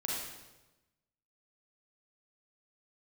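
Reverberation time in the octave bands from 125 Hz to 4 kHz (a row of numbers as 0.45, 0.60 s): 1.3, 1.2, 1.1, 1.0, 0.95, 0.90 s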